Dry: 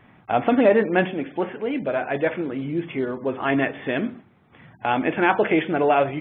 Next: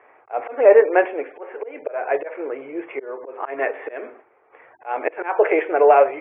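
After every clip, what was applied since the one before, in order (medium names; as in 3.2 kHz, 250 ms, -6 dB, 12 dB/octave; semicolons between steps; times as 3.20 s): slow attack 231 ms; elliptic band-pass 440–2400 Hz, stop band 40 dB; tilt EQ -3 dB/octave; trim +5 dB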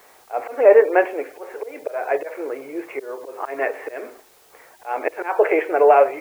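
added noise white -55 dBFS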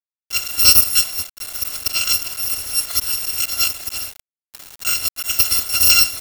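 bit-reversed sample order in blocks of 256 samples; recorder AGC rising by 10 dB/s; bit crusher 5-bit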